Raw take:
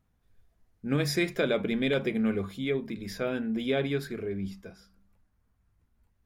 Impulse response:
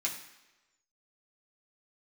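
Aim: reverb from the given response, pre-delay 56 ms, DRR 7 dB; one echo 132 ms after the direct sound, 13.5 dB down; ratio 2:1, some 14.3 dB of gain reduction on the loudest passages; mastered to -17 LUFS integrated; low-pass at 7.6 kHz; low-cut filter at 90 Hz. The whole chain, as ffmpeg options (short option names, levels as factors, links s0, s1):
-filter_complex "[0:a]highpass=90,lowpass=7600,acompressor=threshold=0.00316:ratio=2,aecho=1:1:132:0.211,asplit=2[s0][s1];[1:a]atrim=start_sample=2205,adelay=56[s2];[s1][s2]afir=irnorm=-1:irlink=0,volume=0.282[s3];[s0][s3]amix=inputs=2:normalize=0,volume=18.8"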